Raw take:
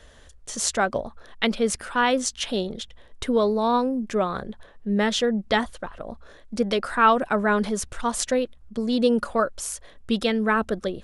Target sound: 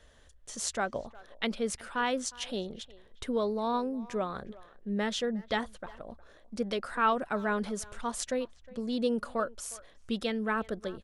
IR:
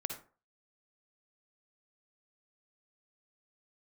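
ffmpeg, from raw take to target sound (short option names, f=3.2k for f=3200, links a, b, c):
-filter_complex "[0:a]asplit=2[a][b];[b]adelay=360,highpass=300,lowpass=3.4k,asoftclip=type=hard:threshold=-15dB,volume=-20dB[c];[a][c]amix=inputs=2:normalize=0,volume=-9dB"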